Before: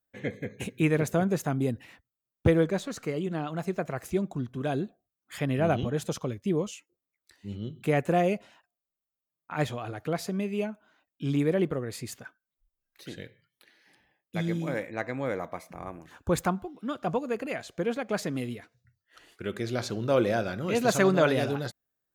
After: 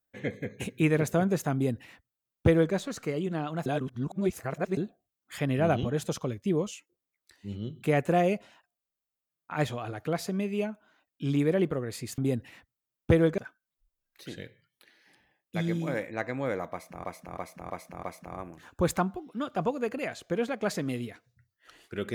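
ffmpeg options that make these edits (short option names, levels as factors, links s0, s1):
-filter_complex "[0:a]asplit=9[s0][s1][s2][s3][s4][s5][s6][s7][s8];[s0]atrim=end=3.662[s9];[s1]atrim=start=3.658:end=4.772,asetpts=PTS-STARTPTS,areverse[s10];[s2]atrim=start=4.768:end=12.182[s11];[s3]atrim=start=1.538:end=2.742[s12];[s4]atrim=start=12.178:end=15.842[s13];[s5]atrim=start=15.508:end=15.842[s14];[s6]atrim=start=15.508:end=15.842[s15];[s7]atrim=start=15.508:end=15.842[s16];[s8]atrim=start=15.508[s17];[s9][s10]acrossfade=d=0.004:c1=hsin:c2=hsin[s18];[s18][s11]acrossfade=d=0.004:c1=hsin:c2=hsin[s19];[s19][s12]acrossfade=d=0.004:c1=hsin:c2=hsin[s20];[s20][s13]acrossfade=d=0.004:c1=hsin:c2=hsin[s21];[s21][s14]acrossfade=d=0.004:c1=hsin:c2=hsin[s22];[s22][s15]acrossfade=d=0.004:c1=hsin:c2=hsin[s23];[s23][s16]acrossfade=d=0.004:c1=hsin:c2=hsin[s24];[s24][s17]acrossfade=d=0.004:c1=hsin:c2=hsin"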